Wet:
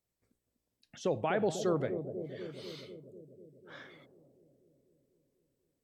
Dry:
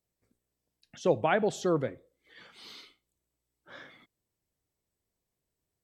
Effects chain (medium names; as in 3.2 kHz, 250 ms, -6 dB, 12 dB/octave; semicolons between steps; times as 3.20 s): peak limiter -19 dBFS, peak gain reduction 7 dB; on a send: bucket-brigade echo 246 ms, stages 1024, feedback 71%, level -7.5 dB; on the sum: trim -2 dB